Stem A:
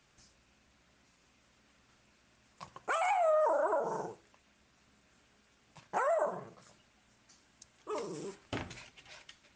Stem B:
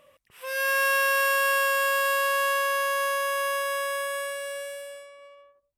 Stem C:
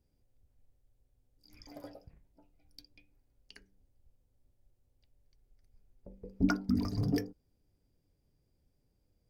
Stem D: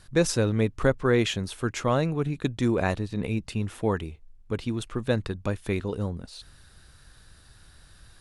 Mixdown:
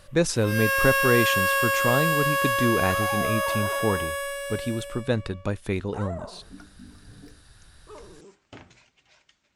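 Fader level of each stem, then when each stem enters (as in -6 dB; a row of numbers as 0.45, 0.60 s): -6.5, +0.5, -17.5, +0.5 dB; 0.00, 0.00, 0.10, 0.00 s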